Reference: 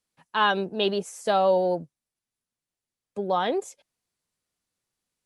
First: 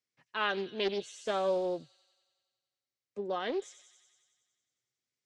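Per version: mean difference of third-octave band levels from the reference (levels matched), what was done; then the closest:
4.5 dB: loudspeaker in its box 110–7,700 Hz, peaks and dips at 120 Hz +9 dB, 180 Hz −8 dB, 380 Hz +3 dB, 890 Hz −8 dB, 2,100 Hz +7 dB, 5,400 Hz +5 dB
delay with a high-pass on its return 92 ms, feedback 71%, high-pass 4,300 Hz, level −7 dB
highs frequency-modulated by the lows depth 0.25 ms
level −8.5 dB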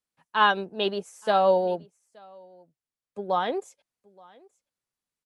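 2.5 dB: parametric band 1,200 Hz +3 dB 1.9 octaves
single-tap delay 875 ms −21 dB
expander for the loud parts 1.5 to 1, over −32 dBFS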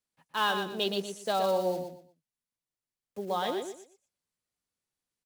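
9.0 dB: one scale factor per block 5 bits
dynamic equaliser 4,500 Hz, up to +6 dB, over −45 dBFS, Q 1.2
on a send: repeating echo 120 ms, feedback 25%, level −7 dB
on the sum: level −7 dB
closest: second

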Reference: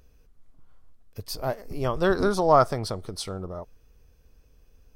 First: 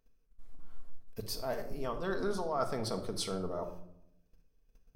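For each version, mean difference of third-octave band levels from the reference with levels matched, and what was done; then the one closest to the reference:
7.5 dB: noise gate −50 dBFS, range −21 dB
parametric band 82 Hz −11.5 dB 0.95 octaves
reversed playback
downward compressor 5 to 1, threshold −37 dBFS, peak gain reduction 21.5 dB
reversed playback
rectangular room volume 1,900 cubic metres, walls furnished, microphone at 1.6 metres
level +2.5 dB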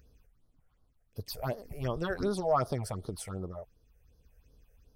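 4.0 dB: high-pass filter 43 Hz 6 dB per octave
in parallel at 0 dB: brickwall limiter −15.5 dBFS, peak gain reduction 9.5 dB
on the sum: all-pass phaser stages 6, 2.7 Hz, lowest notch 260–2,400 Hz
amplitude tremolo 0.66 Hz, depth 36%
level −7.5 dB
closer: second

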